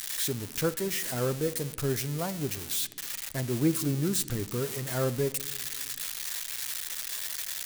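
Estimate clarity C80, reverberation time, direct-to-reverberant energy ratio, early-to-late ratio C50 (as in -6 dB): 19.5 dB, 1.4 s, 10.5 dB, 17.5 dB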